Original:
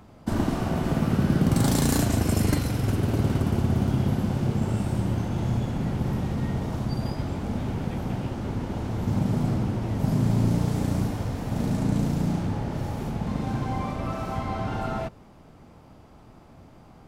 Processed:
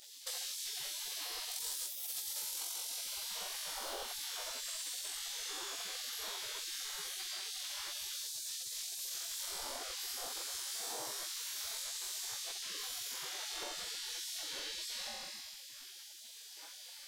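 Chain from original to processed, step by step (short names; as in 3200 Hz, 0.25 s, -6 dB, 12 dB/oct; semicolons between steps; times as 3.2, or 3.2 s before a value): 2.34–3.27 Butterworth band-stop 1800 Hz, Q 4.6; limiter -18 dBFS, peak gain reduction 7 dB; 8.13–9.72 tone controls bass -4 dB, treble +5 dB; flutter echo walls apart 3.8 m, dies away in 1.2 s; spectral gate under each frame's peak -30 dB weak; band shelf 1700 Hz -10.5 dB; compressor 6:1, threshold -54 dBFS, peak gain reduction 20.5 dB; crackling interface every 0.16 s, samples 256, repeat, from 0.5; gain +14 dB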